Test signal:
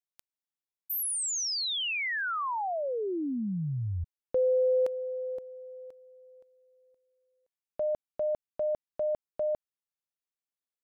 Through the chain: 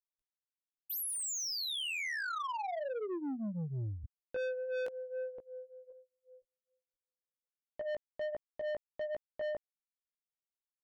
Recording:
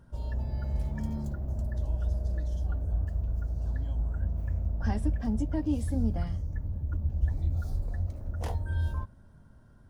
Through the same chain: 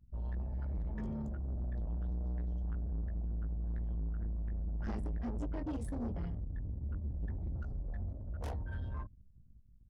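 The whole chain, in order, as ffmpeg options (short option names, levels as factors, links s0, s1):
-af "flanger=delay=16.5:depth=2.4:speed=1.3,anlmdn=0.01,asoftclip=type=tanh:threshold=0.0178,volume=1.12"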